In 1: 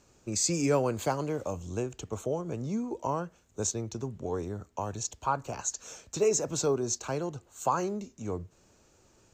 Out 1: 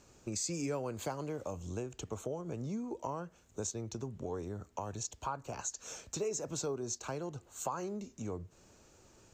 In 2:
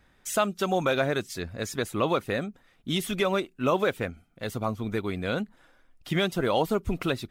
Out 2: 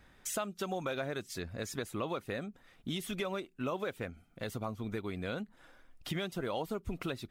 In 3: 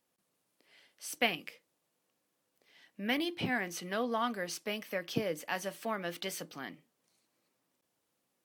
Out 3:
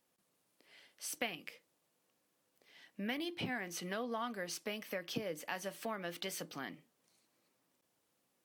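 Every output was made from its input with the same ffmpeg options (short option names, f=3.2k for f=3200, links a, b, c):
-af "acompressor=threshold=-40dB:ratio=2.5,volume=1dB"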